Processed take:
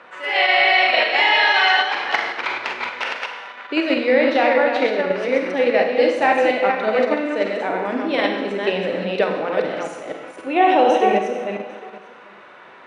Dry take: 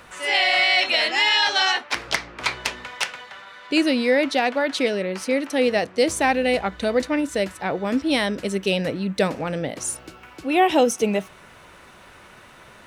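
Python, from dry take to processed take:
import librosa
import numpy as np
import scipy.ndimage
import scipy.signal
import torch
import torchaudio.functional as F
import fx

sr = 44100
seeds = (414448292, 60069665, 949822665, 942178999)

p1 = fx.reverse_delay(x, sr, ms=241, wet_db=-3.5)
p2 = p1 + fx.echo_single(p1, sr, ms=798, db=-22.5, dry=0)
p3 = fx.quant_companded(p2, sr, bits=8)
p4 = fx.bandpass_edges(p3, sr, low_hz=340.0, high_hz=2400.0)
p5 = fx.rev_schroeder(p4, sr, rt60_s=0.89, comb_ms=33, drr_db=2.0)
p6 = fx.level_steps(p5, sr, step_db=10)
p7 = p5 + (p6 * 10.0 ** (2.5 / 20.0))
y = p7 * 10.0 ** (-3.5 / 20.0)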